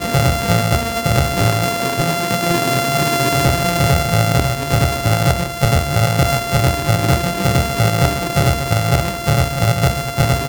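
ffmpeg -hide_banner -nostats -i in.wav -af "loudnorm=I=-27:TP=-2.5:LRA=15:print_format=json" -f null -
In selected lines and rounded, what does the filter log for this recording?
"input_i" : "-16.3",
"input_tp" : "-0.5",
"input_lra" : "0.8",
"input_thresh" : "-26.3",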